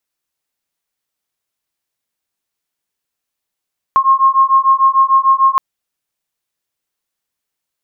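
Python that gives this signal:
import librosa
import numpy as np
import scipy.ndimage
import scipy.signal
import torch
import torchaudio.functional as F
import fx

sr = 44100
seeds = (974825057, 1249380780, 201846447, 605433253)

y = fx.two_tone_beats(sr, length_s=1.62, hz=1070.0, beat_hz=6.7, level_db=-11.0)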